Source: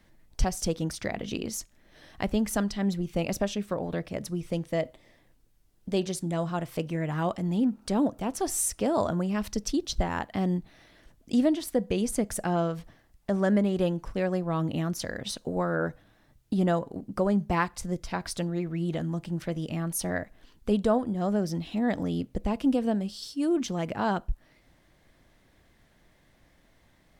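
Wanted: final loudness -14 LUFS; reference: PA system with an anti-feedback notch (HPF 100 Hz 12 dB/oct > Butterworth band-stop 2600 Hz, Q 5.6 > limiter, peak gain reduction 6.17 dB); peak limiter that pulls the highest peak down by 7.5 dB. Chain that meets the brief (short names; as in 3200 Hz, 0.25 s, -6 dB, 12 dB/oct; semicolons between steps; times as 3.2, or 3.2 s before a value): limiter -20 dBFS; HPF 100 Hz 12 dB/oct; Butterworth band-stop 2600 Hz, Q 5.6; gain +20 dB; limiter -4.5 dBFS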